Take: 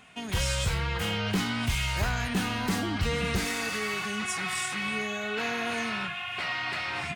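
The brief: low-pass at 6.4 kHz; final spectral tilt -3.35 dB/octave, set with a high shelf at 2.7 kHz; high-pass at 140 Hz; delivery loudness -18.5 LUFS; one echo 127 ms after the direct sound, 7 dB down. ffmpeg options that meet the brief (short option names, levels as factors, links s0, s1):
-af "highpass=140,lowpass=6400,highshelf=f=2700:g=-9,aecho=1:1:127:0.447,volume=4.73"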